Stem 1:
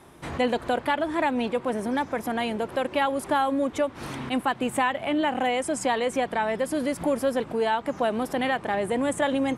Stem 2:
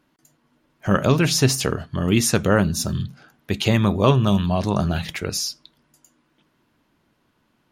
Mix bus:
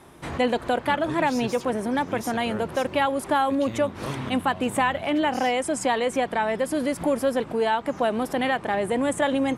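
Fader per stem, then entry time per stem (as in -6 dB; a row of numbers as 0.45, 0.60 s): +1.5, -18.5 dB; 0.00, 0.00 s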